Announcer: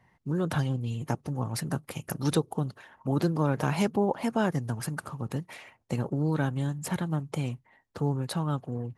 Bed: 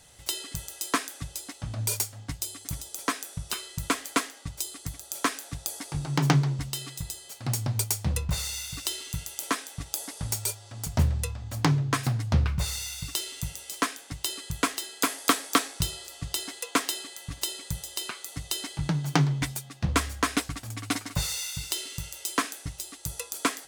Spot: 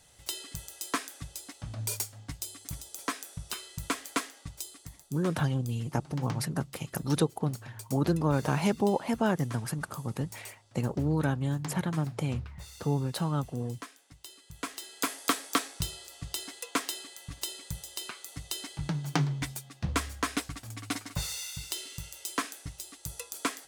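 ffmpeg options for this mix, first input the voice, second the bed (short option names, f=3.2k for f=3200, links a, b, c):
-filter_complex "[0:a]adelay=4850,volume=-0.5dB[a];[1:a]volume=7dB,afade=t=out:st=4.41:d=0.75:silence=0.251189,afade=t=in:st=14.47:d=0.53:silence=0.251189[b];[a][b]amix=inputs=2:normalize=0"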